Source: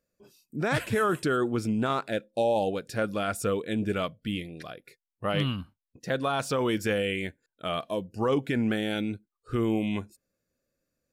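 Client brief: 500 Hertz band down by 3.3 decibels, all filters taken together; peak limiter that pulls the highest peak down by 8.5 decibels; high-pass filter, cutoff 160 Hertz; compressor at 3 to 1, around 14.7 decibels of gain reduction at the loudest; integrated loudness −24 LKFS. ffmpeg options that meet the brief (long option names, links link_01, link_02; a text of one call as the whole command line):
ffmpeg -i in.wav -af "highpass=160,equalizer=frequency=500:width_type=o:gain=-4,acompressor=threshold=-45dB:ratio=3,volume=23dB,alimiter=limit=-12dB:level=0:latency=1" out.wav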